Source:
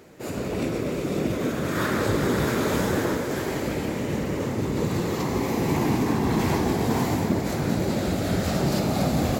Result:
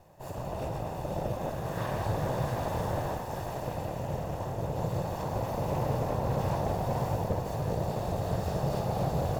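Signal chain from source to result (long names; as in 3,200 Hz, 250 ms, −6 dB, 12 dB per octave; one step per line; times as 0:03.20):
lower of the sound and its delayed copy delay 1.1 ms
graphic EQ with 10 bands 125 Hz +5 dB, 250 Hz −11 dB, 500 Hz +9 dB, 2,000 Hz −9 dB, 4,000 Hz −4 dB, 8,000 Hz −5 dB
slew-rate limiting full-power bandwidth 64 Hz
level −5.5 dB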